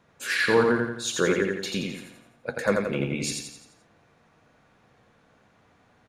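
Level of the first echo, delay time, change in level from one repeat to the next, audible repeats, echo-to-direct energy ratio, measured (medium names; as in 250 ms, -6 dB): -3.5 dB, 86 ms, -6.5 dB, 5, -2.5 dB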